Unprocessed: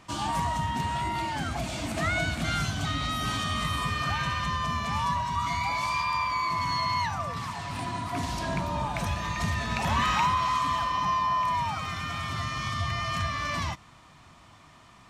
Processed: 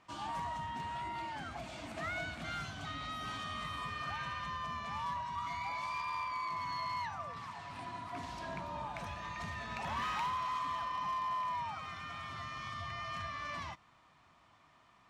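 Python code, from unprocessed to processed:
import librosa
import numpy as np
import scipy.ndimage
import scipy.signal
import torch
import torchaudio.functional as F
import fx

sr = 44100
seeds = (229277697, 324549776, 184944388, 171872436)

y = fx.lowpass(x, sr, hz=2500.0, slope=6)
y = fx.low_shelf(y, sr, hz=340.0, db=-9.5)
y = fx.clip_asym(y, sr, top_db=-25.0, bottom_db=-23.0)
y = y * librosa.db_to_amplitude(-8.0)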